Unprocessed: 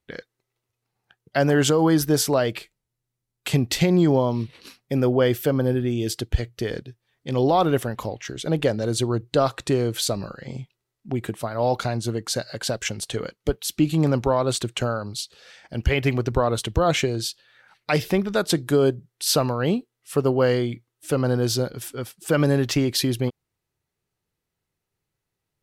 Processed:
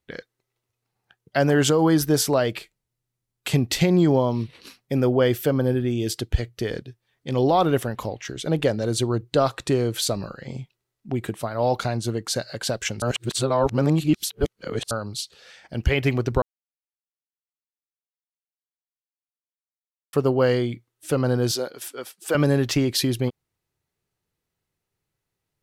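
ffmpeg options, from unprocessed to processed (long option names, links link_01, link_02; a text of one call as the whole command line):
ffmpeg -i in.wav -filter_complex "[0:a]asettb=1/sr,asplit=3[link_01][link_02][link_03];[link_01]atrim=end=21.514[link_04];[link_02]atrim=start=21.51:end=22.35,asetpts=PTS-STARTPTS,afade=type=in:duration=0.004:curve=qsin,afade=type=out:start_time=0.836:duration=0.004:curve=qsin,highpass=390[link_05];[link_03]atrim=start=22.346[link_06];[link_04][link_05]acrossfade=duration=0.004:curve1=hsin:curve2=qsin[link_07];[link_07][link_06]acrossfade=duration=0.004:curve1=qsin:curve2=hsin,asplit=5[link_08][link_09][link_10][link_11][link_12];[link_08]atrim=end=13.022[link_13];[link_09]atrim=start=13.018:end=14.912,asetpts=PTS-STARTPTS,areverse[link_14];[link_10]atrim=start=14.908:end=16.42,asetpts=PTS-STARTPTS,afade=type=out:start_time=1.508:duration=0.004:curve=hsin[link_15];[link_11]atrim=start=16.42:end=20.13,asetpts=PTS-STARTPTS,volume=0[link_16];[link_12]atrim=start=20.13,asetpts=PTS-STARTPTS,afade=type=in:duration=0.004:curve=hsin[link_17];[link_13][link_14]acrossfade=duration=0.004:curve1=hsin:curve2=hsin[link_18];[link_15][link_16][link_17]concat=n=3:v=0:a=1[link_19];[link_18][link_19]acrossfade=duration=0.004:curve1=hsin:curve2=hsin" out.wav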